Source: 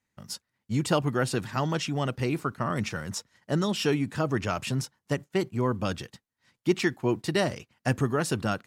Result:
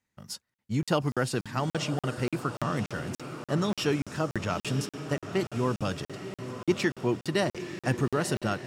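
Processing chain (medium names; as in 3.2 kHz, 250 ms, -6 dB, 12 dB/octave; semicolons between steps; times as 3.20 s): echo that smears into a reverb 960 ms, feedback 55%, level -9.5 dB; crackling interface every 0.29 s, samples 2048, zero, from 0.54 s; trim -1.5 dB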